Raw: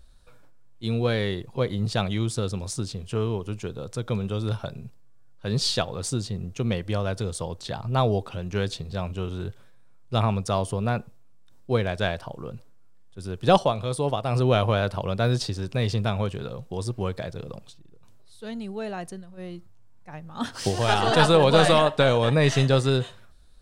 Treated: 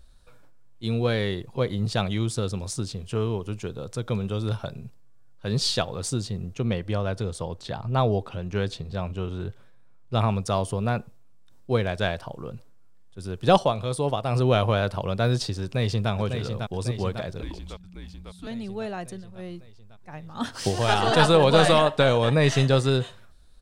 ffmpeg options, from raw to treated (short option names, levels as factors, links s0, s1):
-filter_complex "[0:a]asettb=1/sr,asplit=3[s0][s1][s2];[s0]atrim=end=6.544[s3];[s1]atrim=start=6.54:end=10.19,asetpts=PTS-STARTPTS,afade=t=in:d=0.004:c=qsin,afade=t=out:st=3.646:d=0.004:c=qsin,highshelf=f=4600:g=-7[s4];[s2]atrim=start=10.186[s5];[s3][s4]acrossfade=d=0.004:c1=hsin:c2=qsin[s6];[s6][s5]acrossfade=d=0.004:c1=qsin:c2=hsin,asplit=2[s7][s8];[s8]afade=t=in:st=15.63:d=0.01,afade=t=out:st=16.11:d=0.01,aecho=0:1:550|1100|1650|2200|2750|3300|3850|4400|4950|5500:0.501187|0.325772|0.211752|0.137639|0.0894651|0.0581523|0.037799|0.0245693|0.0159701|0.0103805[s9];[s7][s9]amix=inputs=2:normalize=0,asettb=1/sr,asplit=3[s10][s11][s12];[s10]atrim=end=17.424[s13];[s11]atrim=start=17.42:end=18.47,asetpts=PTS-STARTPTS,afade=t=in:d=0.004:c=qsin,afade=t=out:st=1.046:d=0.004:c=qsin,afreqshift=-180[s14];[s12]atrim=start=18.466[s15];[s13][s14]acrossfade=d=0.004:c1=hsin:c2=qsin[s16];[s16][s15]acrossfade=d=0.004:c1=qsin:c2=hsin"